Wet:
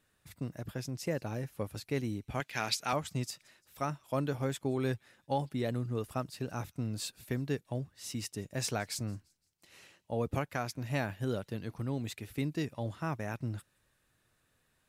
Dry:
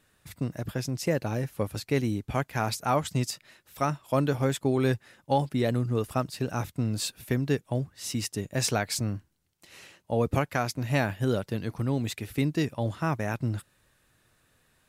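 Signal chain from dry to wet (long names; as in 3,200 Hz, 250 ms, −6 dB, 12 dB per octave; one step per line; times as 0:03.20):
0:02.40–0:02.93: meter weighting curve D
delay with a high-pass on its return 171 ms, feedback 40%, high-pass 3,500 Hz, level −24 dB
level −7.5 dB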